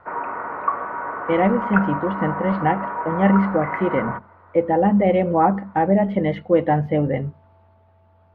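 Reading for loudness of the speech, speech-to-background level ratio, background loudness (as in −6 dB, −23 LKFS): −20.5 LKFS, 6.5 dB, −27.0 LKFS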